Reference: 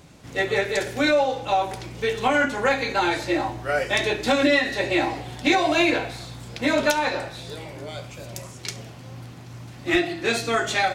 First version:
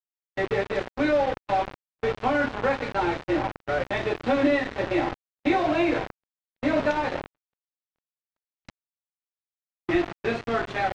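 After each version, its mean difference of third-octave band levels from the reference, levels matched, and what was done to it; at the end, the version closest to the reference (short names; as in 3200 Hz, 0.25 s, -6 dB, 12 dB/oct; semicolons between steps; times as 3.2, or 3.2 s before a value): 12.5 dB: band-limited delay 0.468 s, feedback 61%, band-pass 1200 Hz, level -14 dB; bit-crush 4-bit; gate -33 dBFS, range -38 dB; tape spacing loss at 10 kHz 38 dB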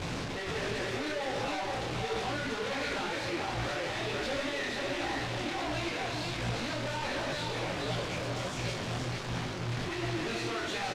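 9.0 dB: infinite clipping; LPF 4800 Hz 12 dB/oct; echo 0.469 s -3.5 dB; detuned doubles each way 48 cents; gain -7 dB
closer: second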